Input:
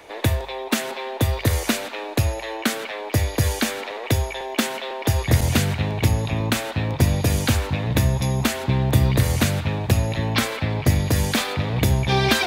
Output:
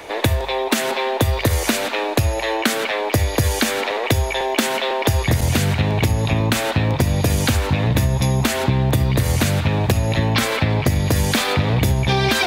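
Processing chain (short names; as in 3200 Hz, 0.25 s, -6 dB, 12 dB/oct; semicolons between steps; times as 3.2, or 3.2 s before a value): in parallel at +2 dB: limiter -11.5 dBFS, peak gain reduction 7 dB; on the sum: compressor, threshold -16 dBFS, peak gain reduction 10 dB; gain +2 dB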